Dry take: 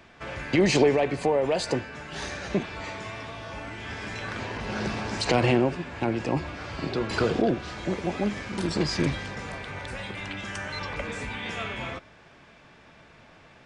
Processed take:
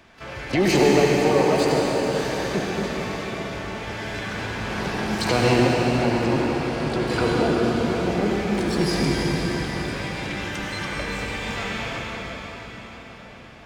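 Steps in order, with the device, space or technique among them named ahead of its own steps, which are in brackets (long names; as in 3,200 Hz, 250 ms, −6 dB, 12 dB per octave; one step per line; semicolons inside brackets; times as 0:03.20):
shimmer-style reverb (pitch-shifted copies added +12 semitones −12 dB; convolution reverb RT60 5.4 s, pre-delay 71 ms, DRR −3 dB)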